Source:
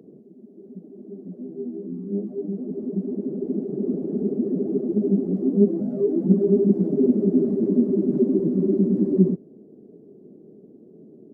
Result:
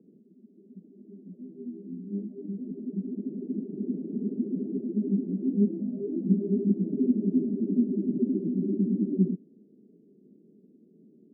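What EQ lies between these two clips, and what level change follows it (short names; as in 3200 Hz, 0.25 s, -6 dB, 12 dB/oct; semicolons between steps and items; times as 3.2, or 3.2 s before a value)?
dynamic EQ 270 Hz, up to +4 dB, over -34 dBFS, Q 2.2; ladder band-pass 240 Hz, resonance 40%; 0.0 dB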